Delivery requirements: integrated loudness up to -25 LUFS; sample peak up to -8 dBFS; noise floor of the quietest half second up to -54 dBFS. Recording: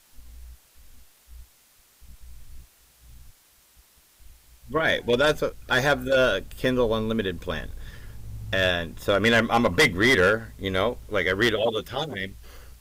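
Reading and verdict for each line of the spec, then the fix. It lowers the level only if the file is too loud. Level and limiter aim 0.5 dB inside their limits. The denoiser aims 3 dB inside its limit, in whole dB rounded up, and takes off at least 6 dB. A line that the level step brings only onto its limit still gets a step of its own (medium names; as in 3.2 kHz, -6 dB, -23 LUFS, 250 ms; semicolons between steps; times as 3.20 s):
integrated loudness -23.5 LUFS: fail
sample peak -11.5 dBFS: pass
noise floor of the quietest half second -59 dBFS: pass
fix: trim -2 dB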